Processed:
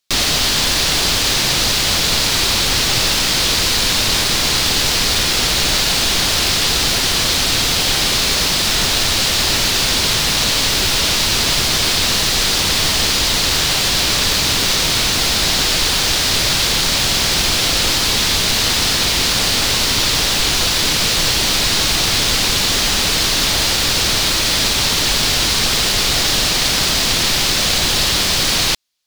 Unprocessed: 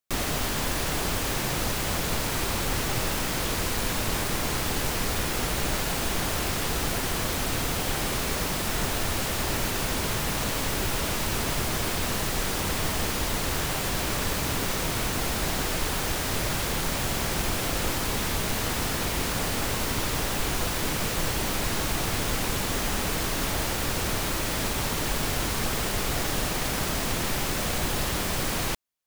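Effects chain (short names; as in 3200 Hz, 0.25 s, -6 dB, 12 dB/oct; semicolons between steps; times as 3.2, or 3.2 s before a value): bell 4300 Hz +14.5 dB 1.7 oct; gain +6 dB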